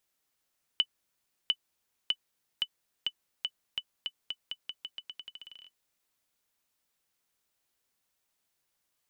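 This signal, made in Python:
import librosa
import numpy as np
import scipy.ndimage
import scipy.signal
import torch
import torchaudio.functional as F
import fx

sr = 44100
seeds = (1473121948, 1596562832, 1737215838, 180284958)

y = fx.bouncing_ball(sr, first_gap_s=0.7, ratio=0.86, hz=2990.0, decay_ms=58.0, level_db=-13.5)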